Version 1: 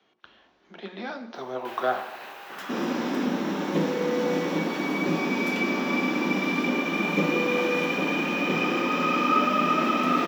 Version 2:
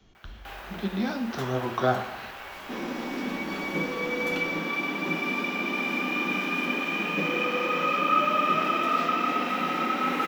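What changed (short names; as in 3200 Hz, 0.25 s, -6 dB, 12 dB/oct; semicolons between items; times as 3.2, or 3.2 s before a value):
speech: remove BPF 420–3600 Hz; first sound: entry -1.20 s; second sound -6.0 dB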